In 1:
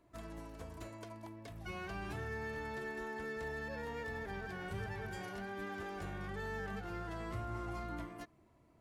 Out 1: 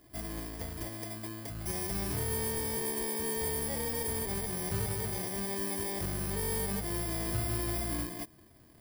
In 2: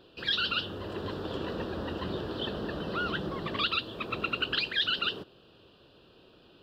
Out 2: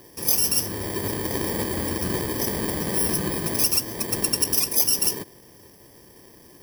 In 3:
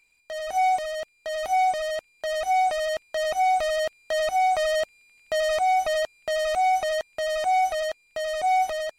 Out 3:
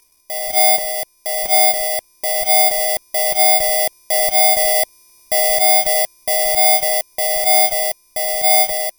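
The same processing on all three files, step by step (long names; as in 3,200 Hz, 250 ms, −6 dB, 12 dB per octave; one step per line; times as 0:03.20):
samples in bit-reversed order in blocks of 32 samples
level +8.5 dB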